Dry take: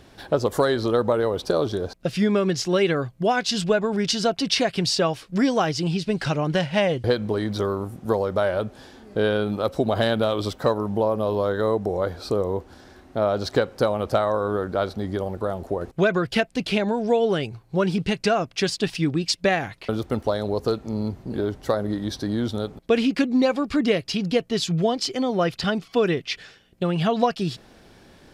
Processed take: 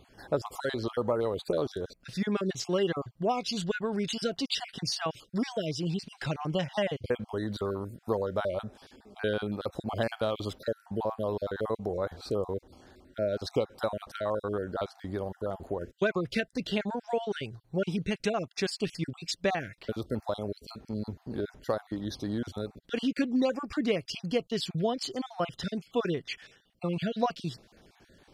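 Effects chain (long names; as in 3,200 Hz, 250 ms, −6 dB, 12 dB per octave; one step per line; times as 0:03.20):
time-frequency cells dropped at random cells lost 32%
level −7 dB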